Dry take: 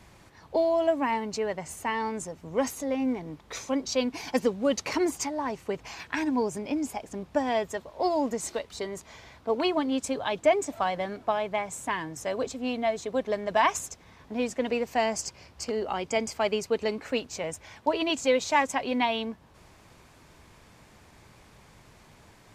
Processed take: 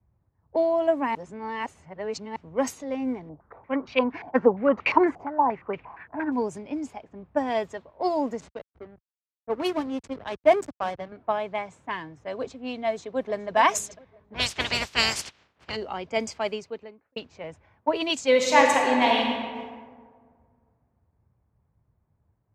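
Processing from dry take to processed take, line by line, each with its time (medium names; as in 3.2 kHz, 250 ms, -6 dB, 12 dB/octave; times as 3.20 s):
1.15–2.36 s: reverse
3.29–6.32 s: step-sequenced low-pass 8.6 Hz 700–2500 Hz
8.40–11.12 s: hysteresis with a dead band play -26.5 dBFS
12.87–13.56 s: echo throw 420 ms, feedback 70%, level -16 dB
14.33–15.75 s: spectral peaks clipped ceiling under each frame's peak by 29 dB
16.32–17.16 s: fade out
18.28–19.26 s: reverb throw, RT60 3 s, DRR -1 dB
whole clip: level-controlled noise filter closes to 1 kHz, open at -22.5 dBFS; high-pass 68 Hz; three bands expanded up and down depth 70%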